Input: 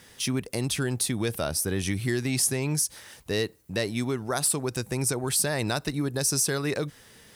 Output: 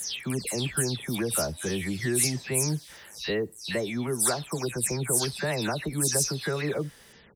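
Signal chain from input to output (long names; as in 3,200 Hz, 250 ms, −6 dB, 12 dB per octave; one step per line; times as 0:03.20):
every frequency bin delayed by itself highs early, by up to 234 ms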